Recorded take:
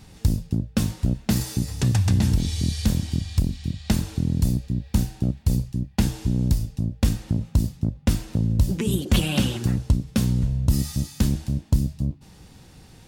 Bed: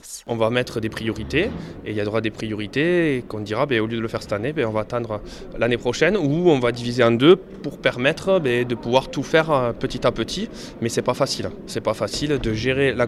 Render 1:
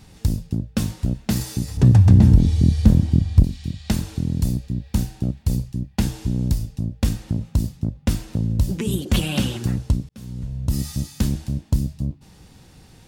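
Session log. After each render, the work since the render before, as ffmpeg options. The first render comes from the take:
-filter_complex "[0:a]asettb=1/sr,asplit=3[a][b][c];[a]atrim=end=1.774[d];[b]atrim=start=1.77:end=3.44,asetpts=PTS-STARTPTS,afade=t=in:d=0.004:c=qsin,afade=t=out:st=1.666:d=0.004:c=qsin,tiltshelf=f=1.3k:g=8.5[e];[c]atrim=start=3.436[f];[d][e]acrossfade=d=0.004:c1=hsin:c2=qsin[g];[g][f]acrossfade=d=0.004:c1=qsin:c2=hsin,asplit=2[h][i];[h]atrim=end=10.09,asetpts=PTS-STARTPTS,afade=t=out:st=10.086:d=0.004:c=hsin[j];[i]atrim=start=10.09,asetpts=PTS-STARTPTS,afade=t=in:d=0.79[k];[j][k]concat=n=2:v=0:a=1"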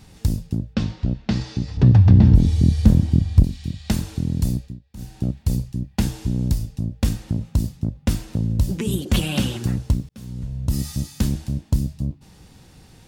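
-filter_complex "[0:a]asettb=1/sr,asplit=3[a][b][c];[a]atrim=end=0.744[d];[b]atrim=start=0.74:end=2.35,asetpts=PTS-STARTPTS,afade=t=in:d=0.004:c=qsin,afade=t=out:st=1.606:d=0.004:c=qsin,lowpass=f=4.9k:w=0.5412,lowpass=f=4.9k:w=1.3066[e];[c]atrim=start=2.346[f];[d][e]acrossfade=d=0.004:c1=hsin:c2=qsin[g];[g][f]acrossfade=d=0.004:c1=qsin:c2=hsin,asettb=1/sr,asplit=3[h][i][j];[h]atrim=end=9.854[k];[i]atrim=start=9.85:end=10.28,asetpts=PTS-STARTPTS,afade=t=in:d=0.004:c=qsin,afade=t=out:st=0.426:d=0.004:c=qsin,acrusher=bits=9:mode=log:mix=0:aa=0.000001[l];[j]atrim=start=10.276[m];[k][l]acrossfade=d=0.004:c1=hsin:c2=qsin[n];[n][m]acrossfade=d=0.004:c1=qsin:c2=hsin,asplit=3[o][p][q];[o]atrim=end=4.8,asetpts=PTS-STARTPTS,afade=t=out:st=4.56:d=0.24:silence=0.1[r];[p]atrim=start=4.8:end=4.96,asetpts=PTS-STARTPTS,volume=-20dB[s];[q]atrim=start=4.96,asetpts=PTS-STARTPTS,afade=t=in:d=0.24:silence=0.1[t];[r][s][t]concat=n=3:v=0:a=1"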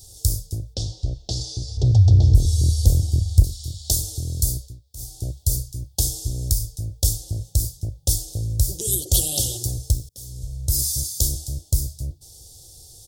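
-af "firequalizer=gain_entry='entry(100,0);entry(210,-24);entry(340,-5);entry(490,-3);entry(720,-4);entry(1100,-27);entry(2300,-30);entry(3300,0);entry(5200,11);entry(8500,15)':delay=0.05:min_phase=1"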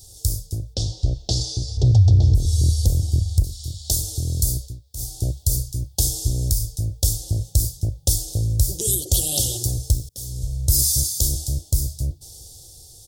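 -af "dynaudnorm=f=170:g=9:m=11.5dB,alimiter=limit=-6.5dB:level=0:latency=1:release=207"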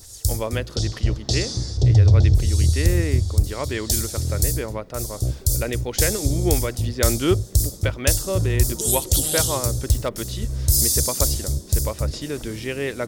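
-filter_complex "[1:a]volume=-7.5dB[a];[0:a][a]amix=inputs=2:normalize=0"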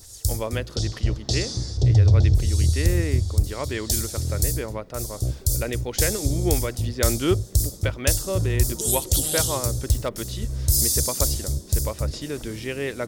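-af "volume=-2dB"

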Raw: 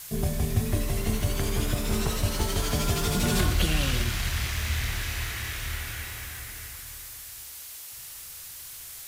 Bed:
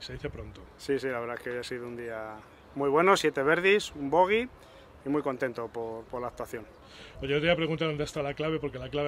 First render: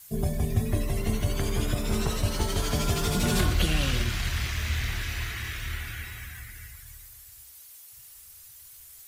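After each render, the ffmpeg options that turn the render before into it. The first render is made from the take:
-af "afftdn=nr=12:nf=-42"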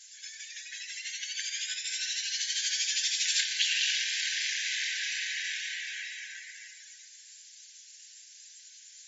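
-af "highshelf=f=3.6k:g=9.5,afftfilt=real='re*between(b*sr/4096,1500,7500)':imag='im*between(b*sr/4096,1500,7500)':win_size=4096:overlap=0.75"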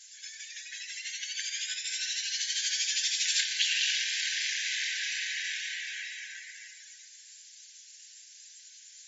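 -af anull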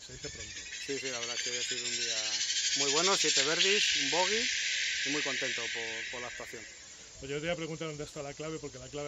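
-filter_complex "[1:a]volume=-9dB[a];[0:a][a]amix=inputs=2:normalize=0"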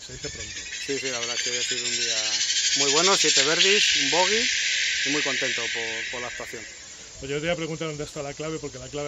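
-af "volume=8dB"

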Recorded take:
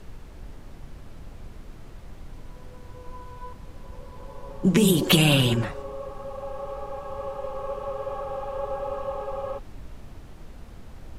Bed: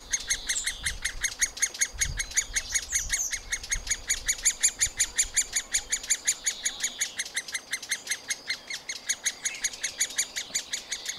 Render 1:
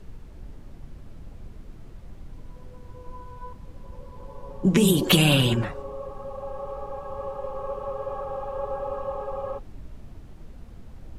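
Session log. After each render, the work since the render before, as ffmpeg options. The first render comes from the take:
-af "afftdn=nr=6:nf=-45"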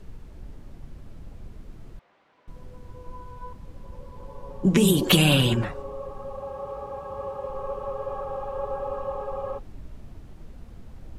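-filter_complex "[0:a]asettb=1/sr,asplit=3[a][b][c];[a]atrim=end=1.994[d];[b]atrim=start=1.99:end=2.48,asetpts=PTS-STARTPTS,afade=t=in:d=0.004:c=qsin,afade=t=out:st=0.486:d=0.004:c=qsin,highpass=770,lowpass=2.9k[e];[c]atrim=start=2.476[f];[d][e]acrossfade=d=0.004:c1=hsin:c2=qsin[g];[g][f]acrossfade=d=0.004:c1=qsin:c2=hsin,asettb=1/sr,asplit=3[h][i][j];[h]atrim=end=6.404[k];[i]atrim=start=6.4:end=7.5,asetpts=PTS-STARTPTS,afade=t=in:d=0.004:c=qsin,afade=t=out:st=1.096:d=0.004:c=qsin,highpass=49[l];[j]atrim=start=7.496[m];[k][l]acrossfade=d=0.004:c1=hsin:c2=qsin[n];[n][m]acrossfade=d=0.004:c1=qsin:c2=hsin"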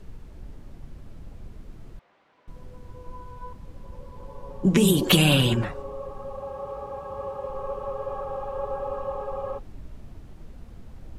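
-af anull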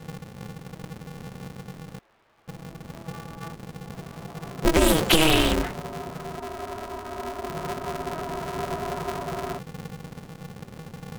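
-af "aeval=exprs='val(0)*sgn(sin(2*PI*160*n/s))':c=same"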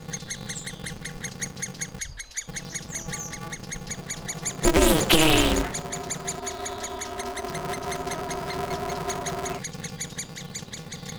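-filter_complex "[1:a]volume=-7dB[a];[0:a][a]amix=inputs=2:normalize=0"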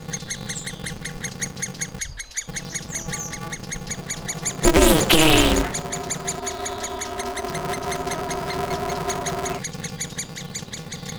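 -af "volume=4dB,alimiter=limit=-3dB:level=0:latency=1"

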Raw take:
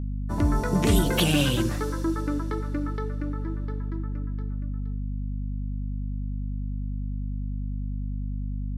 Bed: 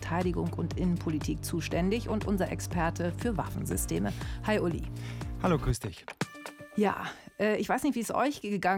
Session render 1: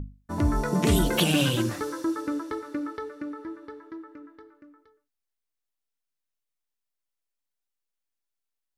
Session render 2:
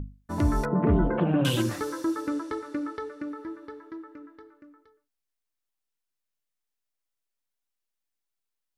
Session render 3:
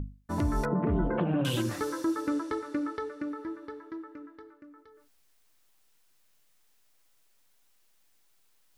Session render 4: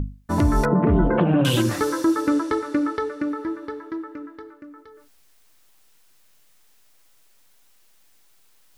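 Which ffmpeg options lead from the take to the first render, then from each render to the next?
-af "bandreject=f=50:t=h:w=6,bandreject=f=100:t=h:w=6,bandreject=f=150:t=h:w=6,bandreject=f=200:t=h:w=6,bandreject=f=250:t=h:w=6"
-filter_complex "[0:a]asettb=1/sr,asplit=3[a][b][c];[a]atrim=end=0.654[d];[b]atrim=start=0.65:end=1.45,asetpts=PTS-STARTPTS,afade=t=in:d=0.004:c=qsin,afade=t=out:st=0.796:d=0.004:c=qsin,lowpass=f=1.5k:w=0.5412,lowpass=f=1.5k:w=1.3066[e];[c]atrim=start=1.446[f];[d][e]acrossfade=d=0.004:c1=hsin:c2=qsin[g];[g][f]acrossfade=d=0.004:c1=qsin:c2=hsin,asettb=1/sr,asplit=3[h][i][j];[h]atrim=end=2.294[k];[i]atrim=start=2.29:end=3.28,asetpts=PTS-STARTPTS,afade=t=in:d=0.004:c=qsin,afade=t=out:st=0.986:d=0.004:c=qsin,lowpass=f=11k:w=0.5412,lowpass=f=11k:w=1.3066[l];[j]atrim=start=3.276[m];[k][l]acrossfade=d=0.004:c1=hsin:c2=qsin[n];[n][m]acrossfade=d=0.004:c1=qsin:c2=hsin"
-af "alimiter=limit=-19dB:level=0:latency=1:release=262,areverse,acompressor=mode=upward:threshold=-50dB:ratio=2.5,areverse"
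-af "volume=9.5dB"

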